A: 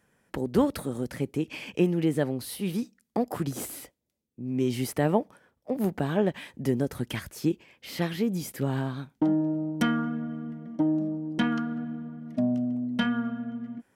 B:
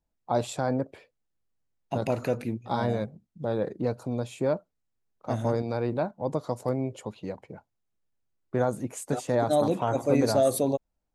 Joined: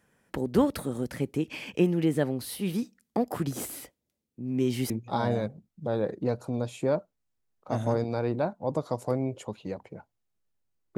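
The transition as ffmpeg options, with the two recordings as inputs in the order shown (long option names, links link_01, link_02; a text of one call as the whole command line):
ffmpeg -i cue0.wav -i cue1.wav -filter_complex "[0:a]apad=whole_dur=10.97,atrim=end=10.97,atrim=end=4.902[link_01];[1:a]atrim=start=2.478:end=8.55[link_02];[link_01][link_02]acrossfade=duration=0.004:curve1=hsin:curve2=hsin" out.wav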